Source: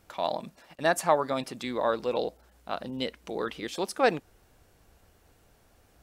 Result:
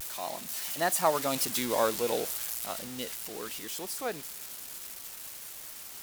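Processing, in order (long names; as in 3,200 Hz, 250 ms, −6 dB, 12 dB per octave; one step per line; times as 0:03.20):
spike at every zero crossing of −20.5 dBFS
source passing by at 0:01.67, 15 m/s, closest 9.7 metres
bit-depth reduction 8 bits, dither triangular
pitch vibrato 0.4 Hz 21 cents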